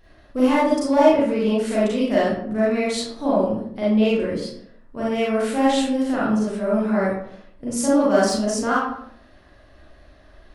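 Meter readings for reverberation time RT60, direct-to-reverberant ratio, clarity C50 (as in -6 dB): 0.65 s, -8.5 dB, -1.0 dB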